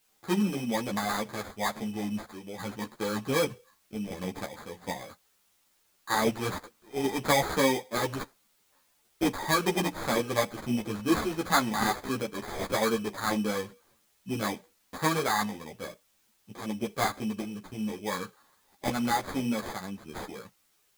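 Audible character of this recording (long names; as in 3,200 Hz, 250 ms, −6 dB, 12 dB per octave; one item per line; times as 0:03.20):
aliases and images of a low sample rate 2,800 Hz, jitter 0%
sample-and-hold tremolo 2.7 Hz
a quantiser's noise floor 12 bits, dither triangular
a shimmering, thickened sound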